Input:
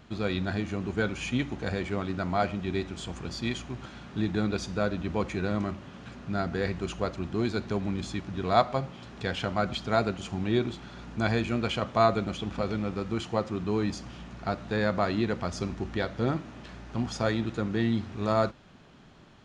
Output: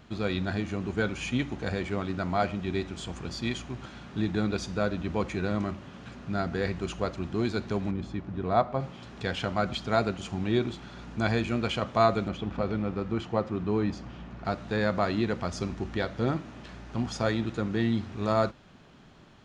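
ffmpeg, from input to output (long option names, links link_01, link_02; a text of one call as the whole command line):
ffmpeg -i in.wav -filter_complex "[0:a]asplit=3[link_01][link_02][link_03];[link_01]afade=type=out:start_time=7.9:duration=0.02[link_04];[link_02]lowpass=frequency=1100:poles=1,afade=type=in:start_time=7.9:duration=0.02,afade=type=out:start_time=8.79:duration=0.02[link_05];[link_03]afade=type=in:start_time=8.79:duration=0.02[link_06];[link_04][link_05][link_06]amix=inputs=3:normalize=0,asettb=1/sr,asplit=3[link_07][link_08][link_09];[link_07]atrim=end=12.284[link_10];[link_08]atrim=start=12.28:end=14.45,asetpts=PTS-STARTPTS,afade=type=in:duration=0.004:curve=qsin,afade=type=out:start_time=2.166:duration=0.004:curve=qsin,aemphasis=mode=reproduction:type=75fm[link_11];[link_09]atrim=start=14.446[link_12];[link_10][link_11]acrossfade=duration=0.004:curve1=hsin:curve2=qsin[link_13];[link_13][link_12]acrossfade=duration=0.004:curve1=qsin:curve2=hsin" out.wav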